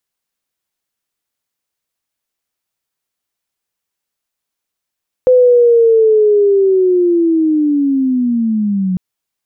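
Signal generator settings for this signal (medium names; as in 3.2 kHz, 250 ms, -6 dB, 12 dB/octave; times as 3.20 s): sweep linear 510 Hz -> 180 Hz -4.5 dBFS -> -12.5 dBFS 3.70 s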